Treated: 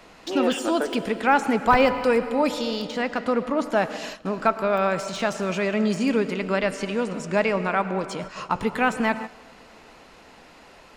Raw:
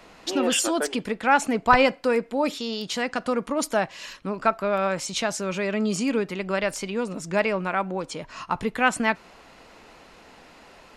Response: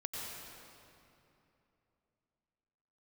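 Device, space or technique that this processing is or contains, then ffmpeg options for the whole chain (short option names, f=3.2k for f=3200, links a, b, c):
keyed gated reverb: -filter_complex "[0:a]deesser=0.8,asettb=1/sr,asplit=3[a][b][c];[a]atrim=end=6.154[d];[b]atrim=start=6.15:end=7.71,asetpts=PTS-STARTPTS,afade=t=in:d=0.004:c=qsin,afade=t=out:st=1.556:d=0.004:c=qsin,lowpass=10k[e];[c]atrim=start=7.706[f];[d][e]acrossfade=d=0.004:c1=hsin:c2=qsin[g];[g][f]acrossfade=d=0.004:c1=qsin:c2=hsin,asplit=3[h][i][j];[1:a]atrim=start_sample=2205[k];[i][k]afir=irnorm=-1:irlink=0[l];[j]apad=whole_len=483645[m];[l][m]sidechaingate=range=-14dB:threshold=-39dB:ratio=16:detection=peak,volume=-8.5dB[n];[h][n]amix=inputs=2:normalize=0,asettb=1/sr,asplit=3[o][p][q];[o]atrim=end=2.874[r];[p]atrim=start=2.87:end=3.77,asetpts=PTS-STARTPTS,afade=t=in:d=0.004:c=qsin,afade=t=out:st=0.896:d=0.004:c=qsin,highshelf=f=5.6k:g=-10.5[s];[q]atrim=start=3.766[t];[r][s]acrossfade=d=0.004:c1=hsin:c2=qsin[u];[u][t]acrossfade=d=0.004:c1=qsin:c2=hsin"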